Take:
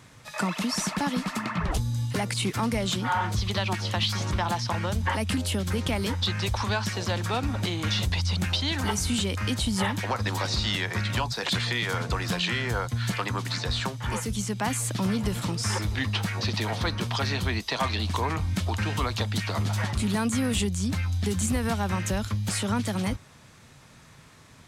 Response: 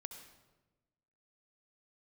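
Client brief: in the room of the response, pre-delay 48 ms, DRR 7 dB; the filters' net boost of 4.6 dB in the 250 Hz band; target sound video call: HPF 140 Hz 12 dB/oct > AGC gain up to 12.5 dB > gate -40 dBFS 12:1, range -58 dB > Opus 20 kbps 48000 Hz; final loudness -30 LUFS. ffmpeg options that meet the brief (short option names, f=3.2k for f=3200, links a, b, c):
-filter_complex "[0:a]equalizer=f=250:t=o:g=6.5,asplit=2[a][b];[1:a]atrim=start_sample=2205,adelay=48[c];[b][c]afir=irnorm=-1:irlink=0,volume=-3dB[d];[a][d]amix=inputs=2:normalize=0,highpass=140,dynaudnorm=m=12.5dB,agate=range=-58dB:threshold=-40dB:ratio=12,volume=-8.5dB" -ar 48000 -c:a libopus -b:a 20k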